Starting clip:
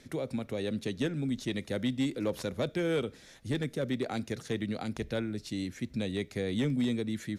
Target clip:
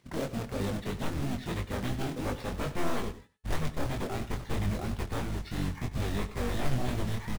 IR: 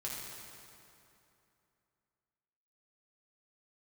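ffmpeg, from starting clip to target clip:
-filter_complex "[0:a]agate=range=0.158:threshold=0.00282:ratio=16:detection=peak,highpass=86,aeval=exprs='0.0944*sin(PI/2*2.82*val(0)/0.0944)':c=same,acrossover=split=4400[s0][s1];[s1]acompressor=threshold=0.00447:ratio=4:attack=1:release=60[s2];[s0][s2]amix=inputs=2:normalize=0,afftdn=nr=28:nf=-38,asubboost=boost=5:cutoff=110,acompressor=mode=upward:threshold=0.00891:ratio=2.5,acrusher=bits=2:mode=log:mix=0:aa=0.000001,asplit=3[s3][s4][s5];[s4]asetrate=22050,aresample=44100,atempo=2,volume=1[s6];[s5]asetrate=35002,aresample=44100,atempo=1.25992,volume=0.316[s7];[s3][s6][s7]amix=inputs=3:normalize=0,flanger=delay=20:depth=5.4:speed=3,bandreject=f=431.9:t=h:w=4,bandreject=f=863.8:t=h:w=4,bandreject=f=1295.7:t=h:w=4,bandreject=f=1727.6:t=h:w=4,bandreject=f=2159.5:t=h:w=4,bandreject=f=2591.4:t=h:w=4,bandreject=f=3023.3:t=h:w=4,bandreject=f=3455.2:t=h:w=4,bandreject=f=3887.1:t=h:w=4,bandreject=f=4319:t=h:w=4,bandreject=f=4750.9:t=h:w=4,bandreject=f=5182.8:t=h:w=4,bandreject=f=5614.7:t=h:w=4,bandreject=f=6046.6:t=h:w=4,bandreject=f=6478.5:t=h:w=4,bandreject=f=6910.4:t=h:w=4,bandreject=f=7342.3:t=h:w=4,bandreject=f=7774.2:t=h:w=4,bandreject=f=8206.1:t=h:w=4,bandreject=f=8638:t=h:w=4,bandreject=f=9069.9:t=h:w=4,bandreject=f=9501.8:t=h:w=4,bandreject=f=9933.7:t=h:w=4,bandreject=f=10365.6:t=h:w=4,bandreject=f=10797.5:t=h:w=4,asplit=2[s8][s9];[s9]aecho=0:1:98:0.168[s10];[s8][s10]amix=inputs=2:normalize=0,volume=0.376"

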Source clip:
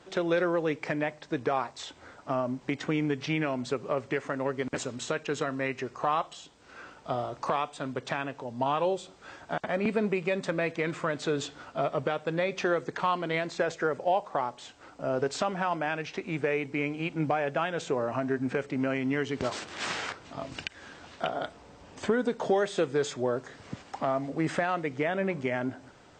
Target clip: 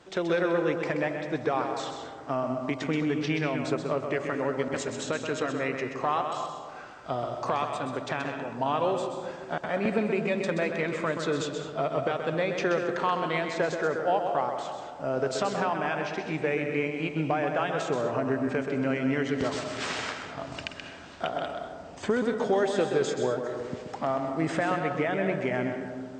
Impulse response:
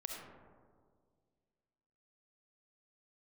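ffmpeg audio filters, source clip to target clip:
-filter_complex "[0:a]asplit=2[s0][s1];[1:a]atrim=start_sample=2205,adelay=129[s2];[s1][s2]afir=irnorm=-1:irlink=0,volume=0.708[s3];[s0][s3]amix=inputs=2:normalize=0"

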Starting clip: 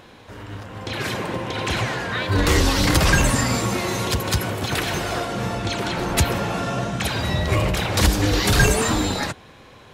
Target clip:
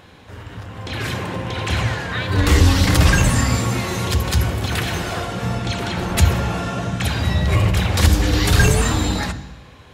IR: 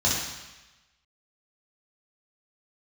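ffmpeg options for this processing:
-filter_complex "[0:a]asplit=2[s0][s1];[1:a]atrim=start_sample=2205,lowshelf=f=270:g=10.5[s2];[s1][s2]afir=irnorm=-1:irlink=0,volume=0.0531[s3];[s0][s3]amix=inputs=2:normalize=0"

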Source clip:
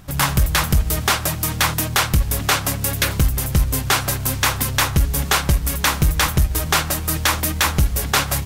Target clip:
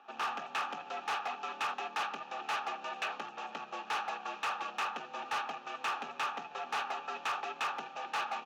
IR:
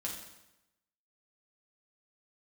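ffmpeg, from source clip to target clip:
-filter_complex "[0:a]asplit=3[s0][s1][s2];[s0]bandpass=f=730:t=q:w=8,volume=1[s3];[s1]bandpass=f=1090:t=q:w=8,volume=0.501[s4];[s2]bandpass=f=2440:t=q:w=8,volume=0.355[s5];[s3][s4][s5]amix=inputs=3:normalize=0,aresample=16000,asoftclip=type=tanh:threshold=0.0237,aresample=44100,highpass=200,equalizer=f=210:t=q:w=4:g=-5,equalizer=f=560:t=q:w=4:g=-5,equalizer=f=1700:t=q:w=4:g=7,equalizer=f=4800:t=q:w=4:g=-5,lowpass=f=6200:w=0.5412,lowpass=f=6200:w=1.3066,asoftclip=type=hard:threshold=0.0224,afreqshift=88,volume=1.5"

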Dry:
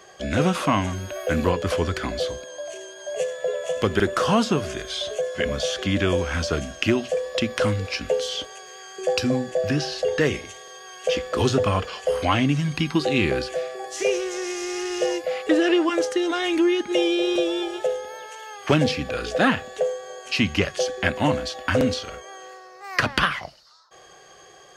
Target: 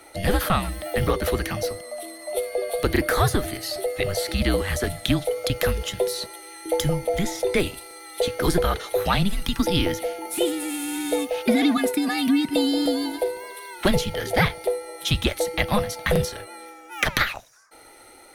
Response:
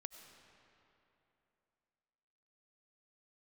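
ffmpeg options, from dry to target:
-af "highshelf=f=6800:t=q:w=3:g=6,afreqshift=-140,asetrate=59535,aresample=44100"

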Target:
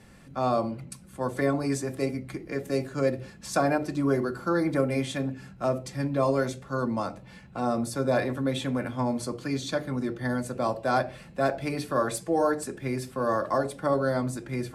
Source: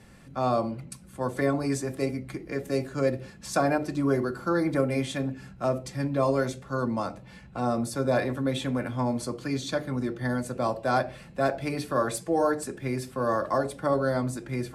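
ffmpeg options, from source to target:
-af "bandreject=f=60:t=h:w=6,bandreject=f=120:t=h:w=6"

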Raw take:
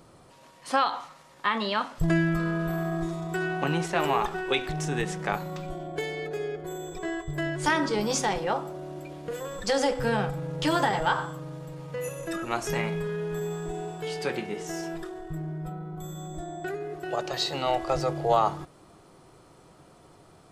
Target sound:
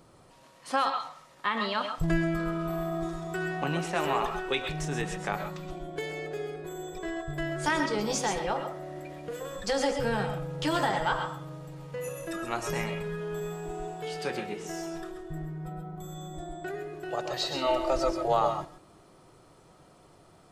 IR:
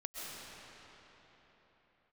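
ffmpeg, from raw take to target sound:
-filter_complex "[0:a]asettb=1/sr,asplit=3[s0][s1][s2];[s0]atrim=end=8.554[s3];[s1]atrim=start=8.55:end=9.19,asetpts=PTS-STARTPTS,afade=t=in:d=0.004:c=qsin,afade=t=out:st=0.636:d=0.004:c=qsin,equalizer=f=1900:t=o:w=0.28:g=13[s4];[s2]atrim=start=9.186[s5];[s3][s4]acrossfade=d=0.004:c1=hsin:c2=qsin[s6];[s6][s5]acrossfade=d=0.004:c1=qsin:c2=hsin,asettb=1/sr,asplit=3[s7][s8][s9];[s7]atrim=end=17.564[s10];[s8]atrim=start=17.56:end=18.28,asetpts=PTS-STARTPTS,afade=t=in:d=0.004:c=qsin,afade=t=out:st=0.716:d=0.004:c=qsin,aecho=1:1:3.3:0.86,atrim=end_sample=31752[s11];[s9]atrim=start=18.276[s12];[s10][s11]acrossfade=d=0.004:c1=hsin:c2=qsin[s13];[s13][s12]acrossfade=d=0.004:c1=qsin:c2=hsin[s14];[1:a]atrim=start_sample=2205,atrim=end_sample=6174[s15];[s14][s15]afir=irnorm=-1:irlink=0,volume=1.26"

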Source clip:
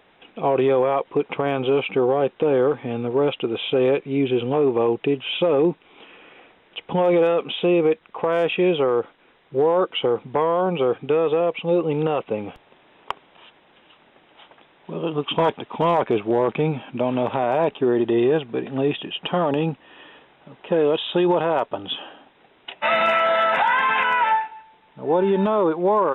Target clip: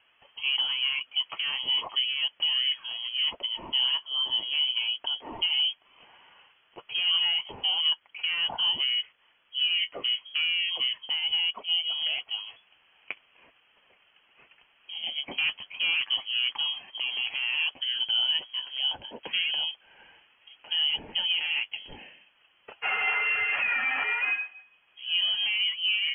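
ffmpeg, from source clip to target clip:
-af "flanger=delay=1.5:depth=9.8:regen=-39:speed=0.35:shape=triangular,lowpass=f=2900:t=q:w=0.5098,lowpass=f=2900:t=q:w=0.6013,lowpass=f=2900:t=q:w=0.9,lowpass=f=2900:t=q:w=2.563,afreqshift=-3400,volume=0.596"

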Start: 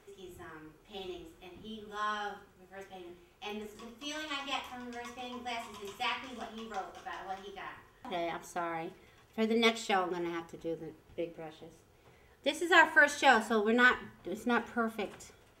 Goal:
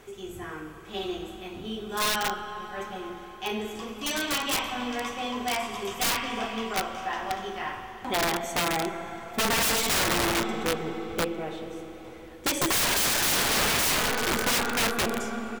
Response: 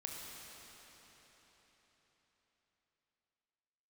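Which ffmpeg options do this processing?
-filter_complex "[0:a]aecho=1:1:65|130|195|260:0.0794|0.0445|0.0249|0.0139,aeval=exprs='0.299*(cos(1*acos(clip(val(0)/0.299,-1,1)))-cos(1*PI/2))+0.106*(cos(2*acos(clip(val(0)/0.299,-1,1)))-cos(2*PI/2))+0.0944*(cos(5*acos(clip(val(0)/0.299,-1,1)))-cos(5*PI/2))+0.00376*(cos(7*acos(clip(val(0)/0.299,-1,1)))-cos(7*PI/2))+0.0422*(cos(8*acos(clip(val(0)/0.299,-1,1)))-cos(8*PI/2))':c=same,asplit=2[s0][s1];[1:a]atrim=start_sample=2205[s2];[s1][s2]afir=irnorm=-1:irlink=0,volume=1.12[s3];[s0][s3]amix=inputs=2:normalize=0,aeval=exprs='(mod(7.5*val(0)+1,2)-1)/7.5':c=same,volume=0.794"

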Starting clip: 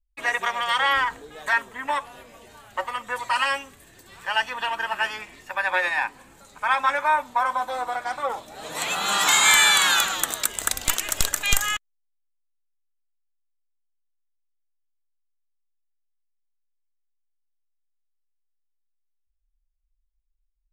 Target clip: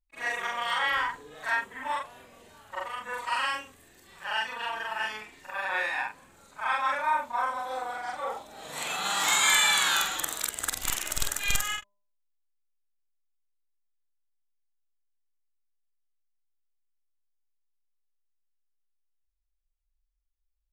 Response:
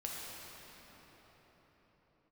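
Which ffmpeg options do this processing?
-af "afftfilt=real='re':imag='-im':win_size=4096:overlap=0.75,bandreject=f=201.6:t=h:w=4,bandreject=f=403.2:t=h:w=4,bandreject=f=604.8:t=h:w=4,bandreject=f=806.4:t=h:w=4,bandreject=f=1008:t=h:w=4,volume=0.841"

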